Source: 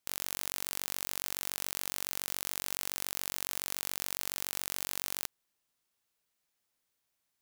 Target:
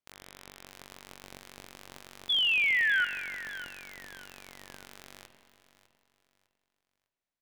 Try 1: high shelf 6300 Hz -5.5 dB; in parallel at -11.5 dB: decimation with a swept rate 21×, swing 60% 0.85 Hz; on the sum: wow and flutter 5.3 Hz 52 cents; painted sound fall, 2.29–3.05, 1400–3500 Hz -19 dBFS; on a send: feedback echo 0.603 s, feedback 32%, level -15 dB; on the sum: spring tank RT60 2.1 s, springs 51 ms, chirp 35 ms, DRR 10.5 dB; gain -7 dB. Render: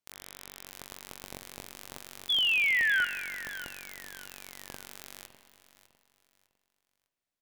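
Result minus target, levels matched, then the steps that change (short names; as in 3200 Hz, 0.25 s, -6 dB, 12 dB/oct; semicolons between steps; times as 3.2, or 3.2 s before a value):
8000 Hz band +7.0 dB
change: high shelf 6300 Hz -16 dB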